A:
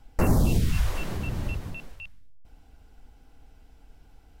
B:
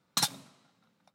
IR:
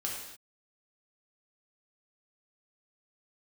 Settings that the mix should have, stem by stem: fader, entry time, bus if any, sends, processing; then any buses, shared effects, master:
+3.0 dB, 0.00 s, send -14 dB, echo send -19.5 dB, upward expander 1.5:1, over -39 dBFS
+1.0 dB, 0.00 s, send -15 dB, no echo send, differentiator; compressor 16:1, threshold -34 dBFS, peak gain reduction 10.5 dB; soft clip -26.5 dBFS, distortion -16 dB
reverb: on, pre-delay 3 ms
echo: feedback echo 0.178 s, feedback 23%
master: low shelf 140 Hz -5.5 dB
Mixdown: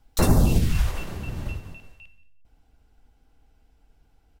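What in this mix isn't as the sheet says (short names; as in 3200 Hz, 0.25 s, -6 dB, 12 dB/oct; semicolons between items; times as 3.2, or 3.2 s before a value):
stem B: missing compressor 16:1, threshold -34 dBFS, peak gain reduction 10.5 dB; master: missing low shelf 140 Hz -5.5 dB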